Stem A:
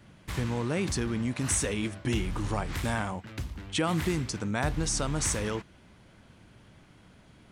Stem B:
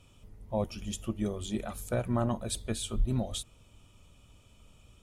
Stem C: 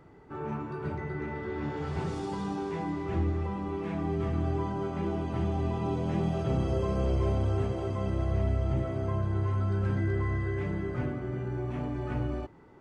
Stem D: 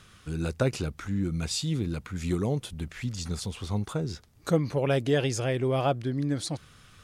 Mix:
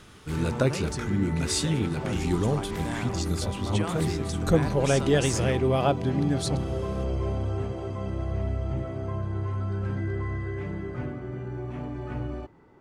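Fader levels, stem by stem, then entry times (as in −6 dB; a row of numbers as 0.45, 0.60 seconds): −5.0, −7.0, −1.0, +2.0 decibels; 0.00, 1.50, 0.00, 0.00 seconds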